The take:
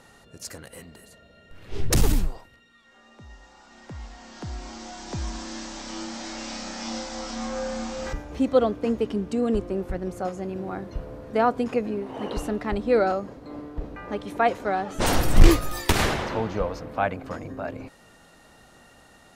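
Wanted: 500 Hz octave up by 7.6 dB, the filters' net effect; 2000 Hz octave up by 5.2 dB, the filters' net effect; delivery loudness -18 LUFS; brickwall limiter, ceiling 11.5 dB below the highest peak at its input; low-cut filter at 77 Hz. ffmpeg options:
-af "highpass=77,equalizer=f=500:t=o:g=8.5,equalizer=f=2k:t=o:g=6,volume=7.5dB,alimiter=limit=-4.5dB:level=0:latency=1"

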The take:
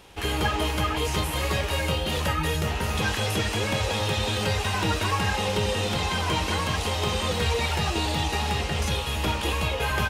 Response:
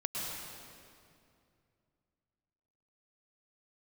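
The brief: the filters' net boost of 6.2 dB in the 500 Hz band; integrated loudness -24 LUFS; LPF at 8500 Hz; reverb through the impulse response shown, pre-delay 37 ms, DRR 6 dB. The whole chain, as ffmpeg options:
-filter_complex "[0:a]lowpass=8.5k,equalizer=f=500:t=o:g=7,asplit=2[a][b];[1:a]atrim=start_sample=2205,adelay=37[c];[b][c]afir=irnorm=-1:irlink=0,volume=-10dB[d];[a][d]amix=inputs=2:normalize=0,volume=-1dB"

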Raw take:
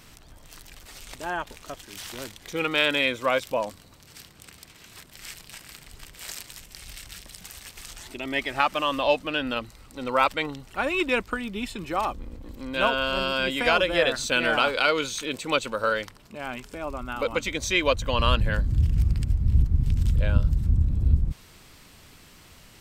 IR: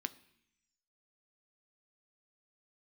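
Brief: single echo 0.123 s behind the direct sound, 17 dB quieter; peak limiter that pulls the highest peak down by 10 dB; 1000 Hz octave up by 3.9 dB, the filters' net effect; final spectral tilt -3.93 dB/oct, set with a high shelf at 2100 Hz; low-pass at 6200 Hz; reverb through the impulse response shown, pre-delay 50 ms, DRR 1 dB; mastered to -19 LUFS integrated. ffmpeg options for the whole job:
-filter_complex "[0:a]lowpass=6.2k,equalizer=f=1k:t=o:g=6.5,highshelf=f=2.1k:g=-5.5,alimiter=limit=-15dB:level=0:latency=1,aecho=1:1:123:0.141,asplit=2[a][b];[1:a]atrim=start_sample=2205,adelay=50[c];[b][c]afir=irnorm=-1:irlink=0,volume=-0.5dB[d];[a][d]amix=inputs=2:normalize=0,volume=7dB"

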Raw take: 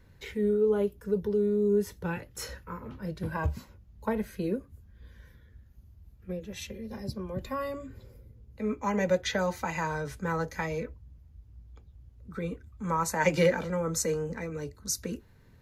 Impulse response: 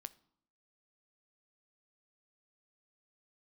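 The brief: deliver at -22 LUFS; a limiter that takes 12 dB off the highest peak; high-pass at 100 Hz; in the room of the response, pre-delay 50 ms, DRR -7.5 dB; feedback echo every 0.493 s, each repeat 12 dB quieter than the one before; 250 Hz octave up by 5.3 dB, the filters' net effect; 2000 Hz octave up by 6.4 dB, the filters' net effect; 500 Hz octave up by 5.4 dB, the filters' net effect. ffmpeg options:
-filter_complex "[0:a]highpass=100,equalizer=f=250:t=o:g=7,equalizer=f=500:t=o:g=4,equalizer=f=2k:t=o:g=7.5,alimiter=limit=-19dB:level=0:latency=1,aecho=1:1:493|986|1479:0.251|0.0628|0.0157,asplit=2[a][b];[1:a]atrim=start_sample=2205,adelay=50[c];[b][c]afir=irnorm=-1:irlink=0,volume=12.5dB[d];[a][d]amix=inputs=2:normalize=0"

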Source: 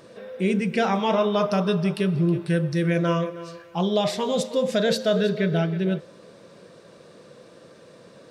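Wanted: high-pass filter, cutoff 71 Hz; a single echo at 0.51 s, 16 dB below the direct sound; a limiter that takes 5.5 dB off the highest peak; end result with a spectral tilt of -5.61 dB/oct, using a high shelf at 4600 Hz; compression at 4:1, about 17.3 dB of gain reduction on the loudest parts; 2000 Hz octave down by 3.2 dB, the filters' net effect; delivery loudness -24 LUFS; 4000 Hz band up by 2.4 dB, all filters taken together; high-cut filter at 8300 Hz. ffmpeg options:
-af "highpass=71,lowpass=8.3k,equalizer=f=2k:t=o:g=-5,equalizer=f=4k:t=o:g=8,highshelf=f=4.6k:g=-7.5,acompressor=threshold=-40dB:ratio=4,alimiter=level_in=8.5dB:limit=-24dB:level=0:latency=1,volume=-8.5dB,aecho=1:1:510:0.158,volume=18dB"

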